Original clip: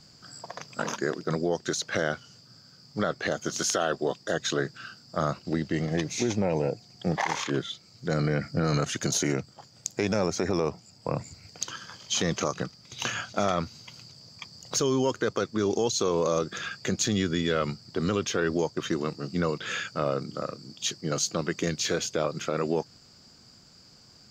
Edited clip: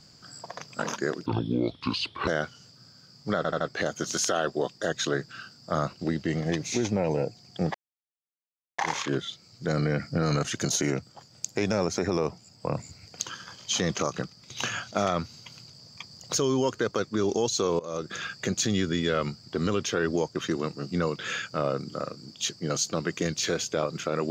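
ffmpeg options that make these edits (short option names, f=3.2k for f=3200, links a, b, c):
-filter_complex "[0:a]asplit=8[a][b][c][d][e][f][g][h];[a]atrim=end=1.264[i];[b]atrim=start=1.26:end=1.97,asetpts=PTS-STARTPTS,asetrate=30870,aresample=44100[j];[c]atrim=start=1.966:end=3.142[k];[d]atrim=start=3.058:end=3.142[l];[e]atrim=start=3.058:end=3.142[m];[f]atrim=start=3.058:end=7.2,asetpts=PTS-STARTPTS,afade=t=out:st=4.138:d=0.004:c=hsin,apad=pad_dur=1.04[n];[g]atrim=start=7.2:end=16.21,asetpts=PTS-STARTPTS,afade=t=in:d=0.004:c=hsin,afade=t=out:st=9.006:d=0.004:c=hsin:silence=0.0794328[o];[h]atrim=start=16.21,asetpts=PTS-STARTPTS,afade=t=in:d=0.36:silence=0.0794328[p];[i][j]acrossfade=d=0.004:c1=hsin:c2=hsin[q];[q][k]acrossfade=d=0.004:c1=hsin:c2=hsin[r];[r][l]acrossfade=d=0.004:c1=hsin:c2=hsin[s];[s][m]acrossfade=d=0.004:c1=hsin:c2=hsin[t];[n][o][p]concat=n=3:v=0:a=1[u];[t][u]acrossfade=d=0.004:c1=hsin:c2=hsin"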